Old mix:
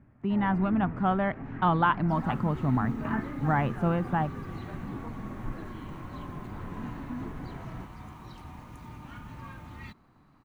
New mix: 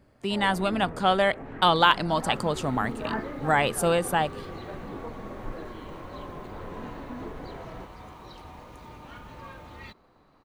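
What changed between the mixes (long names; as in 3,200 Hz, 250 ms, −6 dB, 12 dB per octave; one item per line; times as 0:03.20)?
speech: remove low-pass filter 1,300 Hz 12 dB per octave
master: add octave-band graphic EQ 125/250/500/4,000 Hz −6/−4/+11/+6 dB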